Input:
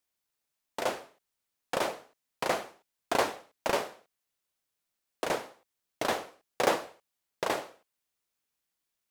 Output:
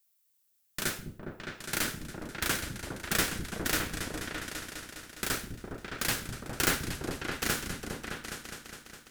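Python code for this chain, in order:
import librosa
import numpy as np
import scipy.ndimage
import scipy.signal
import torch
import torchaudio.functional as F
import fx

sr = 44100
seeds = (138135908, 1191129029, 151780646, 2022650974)

y = fx.riaa(x, sr, side='recording')
y = y * np.sin(2.0 * np.pi * 880.0 * np.arange(len(y)) / sr)
y = fx.echo_opening(y, sr, ms=205, hz=200, octaves=2, feedback_pct=70, wet_db=0)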